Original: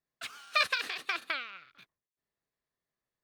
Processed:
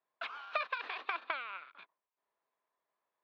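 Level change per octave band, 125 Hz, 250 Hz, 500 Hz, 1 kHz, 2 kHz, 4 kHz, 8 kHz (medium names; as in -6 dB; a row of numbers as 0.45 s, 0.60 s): no reading, -7.5 dB, -1.0 dB, -1.5 dB, -7.0 dB, -12.5 dB, under -25 dB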